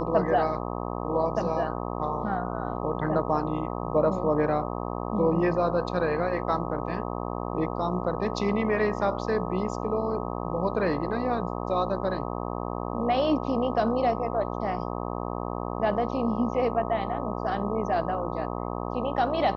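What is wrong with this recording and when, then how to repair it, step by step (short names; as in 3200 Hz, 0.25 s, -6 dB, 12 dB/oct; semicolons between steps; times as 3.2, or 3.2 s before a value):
buzz 60 Hz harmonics 21 -32 dBFS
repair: de-hum 60 Hz, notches 21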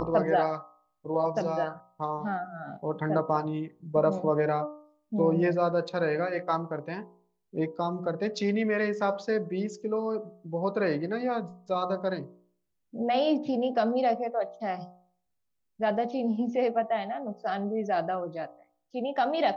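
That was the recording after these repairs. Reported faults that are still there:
none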